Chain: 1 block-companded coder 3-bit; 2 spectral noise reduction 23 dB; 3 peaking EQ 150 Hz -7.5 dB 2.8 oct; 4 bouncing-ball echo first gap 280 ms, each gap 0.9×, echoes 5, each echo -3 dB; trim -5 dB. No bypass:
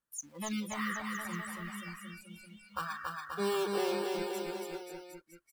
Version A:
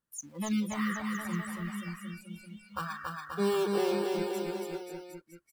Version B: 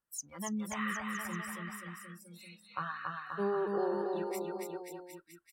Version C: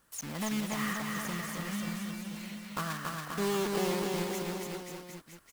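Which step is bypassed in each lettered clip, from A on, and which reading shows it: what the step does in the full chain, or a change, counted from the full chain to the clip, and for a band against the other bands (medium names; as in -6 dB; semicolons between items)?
3, 125 Hz band +6.5 dB; 1, distortion -13 dB; 2, 125 Hz band +5.5 dB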